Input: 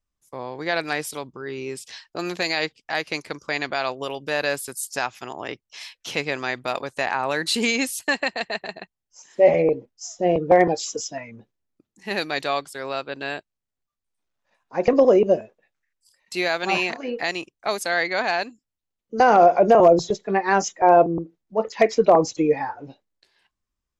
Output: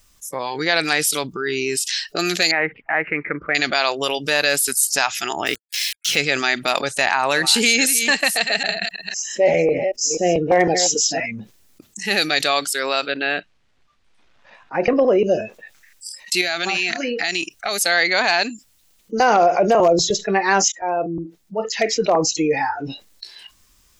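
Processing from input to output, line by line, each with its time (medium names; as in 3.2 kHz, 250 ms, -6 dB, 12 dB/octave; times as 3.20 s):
2.51–3.55 s: elliptic low-pass 2.1 kHz, stop band 70 dB
5.46–6.18 s: small samples zeroed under -42 dBFS
7.09–11.26 s: chunks repeated in reverse 257 ms, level -12 dB
13.12–15.19 s: low-pass 2.8 kHz
16.41–17.86 s: compression, threshold -28 dBFS
20.72–22.83 s: fade in linear, from -19.5 dB
whole clip: spectral noise reduction 14 dB; treble shelf 2.2 kHz +11.5 dB; level flattener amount 50%; trim -3 dB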